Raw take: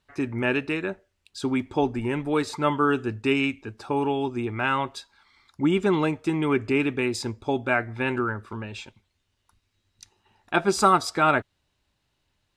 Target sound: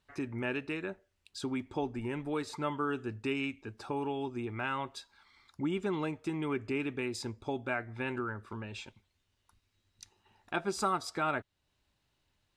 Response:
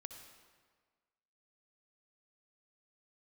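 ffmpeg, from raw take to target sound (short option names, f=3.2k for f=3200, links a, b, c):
-af "acompressor=threshold=-40dB:ratio=1.5,volume=-3.5dB"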